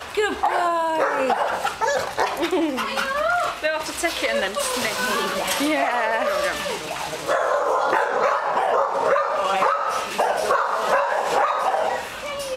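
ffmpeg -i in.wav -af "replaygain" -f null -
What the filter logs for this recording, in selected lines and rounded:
track_gain = +3.8 dB
track_peak = 0.328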